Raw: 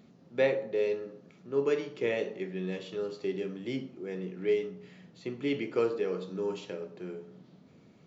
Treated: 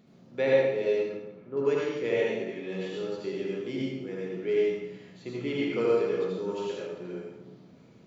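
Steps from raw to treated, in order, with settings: 1.05–1.57 s: low-pass 1.7 kHz 12 dB/octave; reverberation RT60 0.85 s, pre-delay 69 ms, DRR -4.5 dB; trim -2.5 dB

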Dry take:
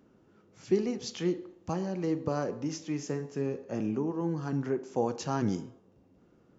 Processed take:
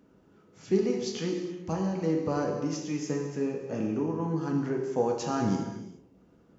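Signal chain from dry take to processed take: gated-style reverb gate 440 ms falling, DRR 1.5 dB

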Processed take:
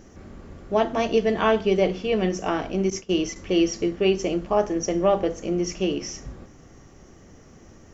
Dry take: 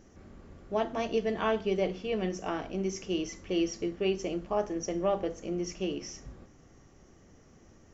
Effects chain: 2.90–3.36 s: gate -40 dBFS, range -17 dB; trim +8.5 dB

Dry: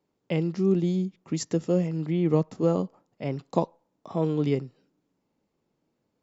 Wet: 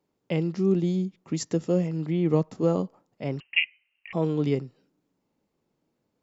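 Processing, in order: 3.40–4.13 s: frequency inversion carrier 3 kHz

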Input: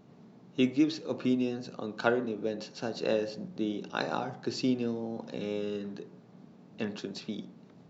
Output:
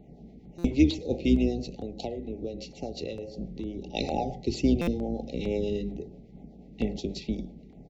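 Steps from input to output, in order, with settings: octave divider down 2 oct, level -5 dB; FFT band-reject 860–1900 Hz; 1.64–3.88 s: compression 6:1, threshold -36 dBFS, peak gain reduction 13.5 dB; harmonic tremolo 8.2 Hz, depth 50%, crossover 410 Hz; LFO notch saw down 2.2 Hz 500–6000 Hz; speakerphone echo 110 ms, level -23 dB; buffer glitch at 0.58/4.81 s, samples 256, times 10; tape noise reduction on one side only decoder only; trim +7.5 dB

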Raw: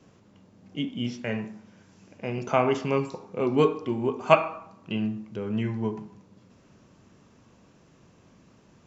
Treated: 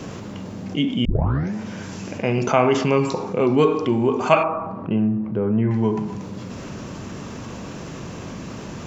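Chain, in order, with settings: 1.05 s: tape start 0.49 s; 4.43–5.71 s: low-pass 1.2 kHz 12 dB/octave; level flattener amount 50%; trim +1 dB

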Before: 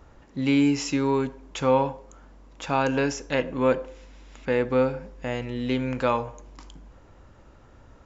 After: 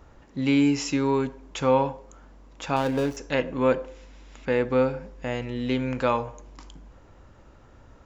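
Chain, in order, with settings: 2.76–3.17 s: median filter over 25 samples

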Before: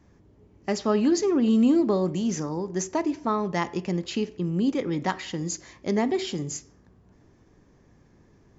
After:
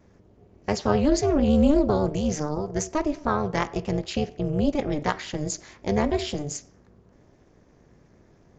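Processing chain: vibrato 8.6 Hz 45 cents; resampled via 16 kHz; AM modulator 300 Hz, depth 90%; trim +5 dB

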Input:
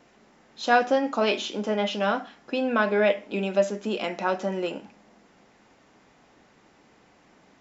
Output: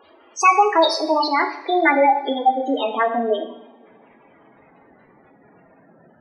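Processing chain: gliding tape speed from 160% -> 85%; treble shelf 2.5 kHz +3.5 dB; hum notches 50/100/150/200/250/300/350 Hz; spectral gate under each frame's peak -10 dB strong; two-slope reverb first 0.73 s, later 2.6 s, from -22 dB, DRR 5.5 dB; trim +7 dB

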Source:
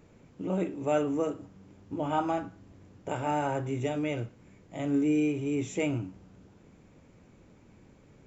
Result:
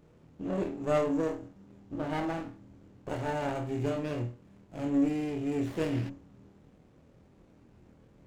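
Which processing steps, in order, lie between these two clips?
flutter echo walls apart 4.3 m, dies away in 0.31 s; 5.66–6.08 s: band noise 1.7–3.1 kHz -42 dBFS; sliding maximum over 17 samples; trim -3 dB

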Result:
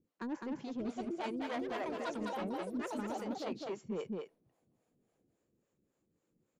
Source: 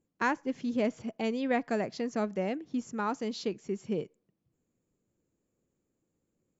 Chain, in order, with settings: ever faster or slower copies 649 ms, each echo +6 st, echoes 2; saturation -27.5 dBFS, distortion -11 dB; bass shelf 94 Hz -7.5 dB; harmonic tremolo 3.6 Hz, depth 100%, crossover 450 Hz; treble shelf 5.6 kHz -9 dB; delay 207 ms -5 dB; reverse; compression, threshold -41 dBFS, peak gain reduction 9 dB; reverse; trim +5.5 dB

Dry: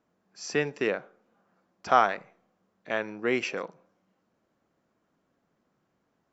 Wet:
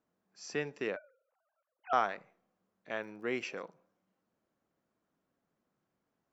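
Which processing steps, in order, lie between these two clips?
0.96–1.93 s: formants replaced by sine waves; 2.98–3.57 s: crackle 67 per s -50 dBFS; trim -8.5 dB

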